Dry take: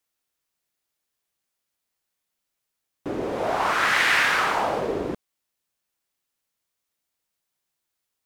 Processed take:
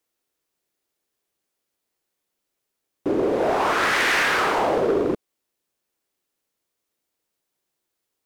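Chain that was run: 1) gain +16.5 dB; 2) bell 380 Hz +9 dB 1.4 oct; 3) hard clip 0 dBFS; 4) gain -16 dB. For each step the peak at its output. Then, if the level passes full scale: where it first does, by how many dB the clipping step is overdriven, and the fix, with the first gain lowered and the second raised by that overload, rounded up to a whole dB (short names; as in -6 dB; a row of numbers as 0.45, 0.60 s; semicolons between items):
+8.0, +9.0, 0.0, -16.0 dBFS; step 1, 9.0 dB; step 1 +7.5 dB, step 4 -7 dB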